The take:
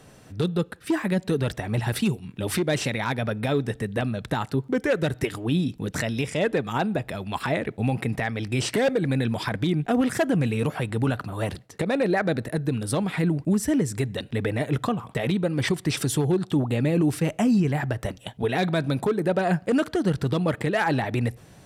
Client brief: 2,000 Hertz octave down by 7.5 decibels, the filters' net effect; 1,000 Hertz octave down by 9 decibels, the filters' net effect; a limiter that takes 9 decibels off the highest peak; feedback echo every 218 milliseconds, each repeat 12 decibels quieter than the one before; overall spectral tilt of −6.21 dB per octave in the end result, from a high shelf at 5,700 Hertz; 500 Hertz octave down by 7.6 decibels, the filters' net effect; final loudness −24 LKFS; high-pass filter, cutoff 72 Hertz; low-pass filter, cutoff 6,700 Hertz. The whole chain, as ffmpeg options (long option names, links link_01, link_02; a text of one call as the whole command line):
ffmpeg -i in.wav -af "highpass=72,lowpass=6700,equalizer=frequency=500:width_type=o:gain=-7.5,equalizer=frequency=1000:width_type=o:gain=-8,equalizer=frequency=2000:width_type=o:gain=-7,highshelf=frequency=5700:gain=4.5,alimiter=limit=-23.5dB:level=0:latency=1,aecho=1:1:218|436|654:0.251|0.0628|0.0157,volume=8dB" out.wav